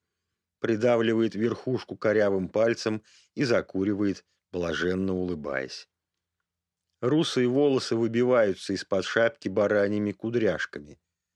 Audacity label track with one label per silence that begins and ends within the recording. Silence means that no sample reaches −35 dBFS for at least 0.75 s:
5.800000	7.030000	silence